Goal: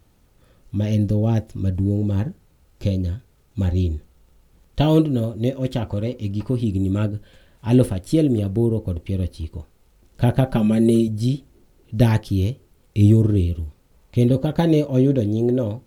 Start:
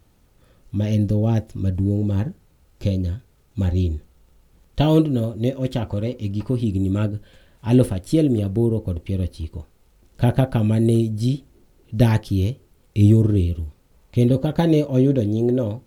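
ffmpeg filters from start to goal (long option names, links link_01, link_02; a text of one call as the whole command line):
ffmpeg -i in.wav -filter_complex "[0:a]asettb=1/sr,asplit=3[link_01][link_02][link_03];[link_01]atrim=end=10.454[link_04];[link_02]atrim=start=10.45:end=11.08,asetpts=PTS-STARTPTS,afade=type=in:duration=0.004:curve=qsin,afade=type=out:start_time=0.626:duration=0.004:curve=qsin,aecho=1:1:5.1:0.78,atrim=end_sample=27783[link_05];[link_03]atrim=start=11.076[link_06];[link_04][link_05]acrossfade=duration=0.004:curve1=hsin:curve2=qsin[link_07];[link_07][link_06]acrossfade=duration=0.004:curve1=qsin:curve2=hsin" out.wav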